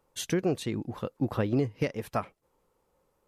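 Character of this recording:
background noise floor −74 dBFS
spectral slope −6.0 dB per octave

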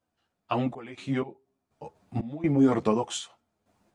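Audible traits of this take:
sample-and-hold tremolo 4.1 Hz, depth 90%
a shimmering, thickened sound

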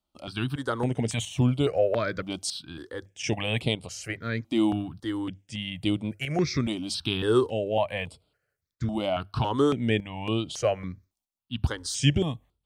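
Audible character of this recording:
tremolo saw up 0.8 Hz, depth 55%
notches that jump at a steady rate 3.6 Hz 450–6,100 Hz

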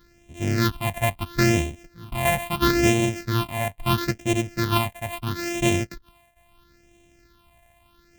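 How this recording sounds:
a buzz of ramps at a fixed pitch in blocks of 128 samples
phaser sweep stages 6, 0.75 Hz, lowest notch 340–1,300 Hz

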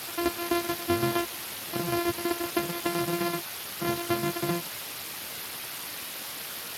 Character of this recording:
a buzz of ramps at a fixed pitch in blocks of 128 samples
tremolo saw down 7.8 Hz, depth 75%
a quantiser's noise floor 6 bits, dither triangular
Speex

